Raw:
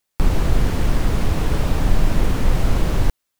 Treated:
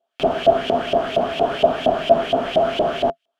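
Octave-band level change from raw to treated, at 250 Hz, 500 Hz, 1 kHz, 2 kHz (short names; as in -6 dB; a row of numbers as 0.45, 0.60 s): -1.5, +13.0, +10.5, +1.5 dB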